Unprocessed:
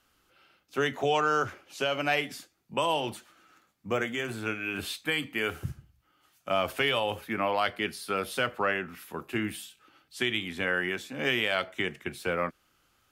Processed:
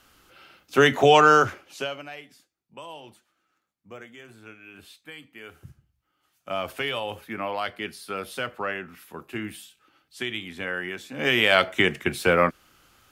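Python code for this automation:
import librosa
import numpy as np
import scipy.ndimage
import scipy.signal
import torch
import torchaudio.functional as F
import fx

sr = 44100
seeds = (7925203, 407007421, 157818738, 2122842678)

y = fx.gain(x, sr, db=fx.line((1.31, 10.5), (1.85, -1.0), (2.1, -13.5), (5.42, -13.5), (6.56, -2.0), (10.96, -2.0), (11.53, 10.0)))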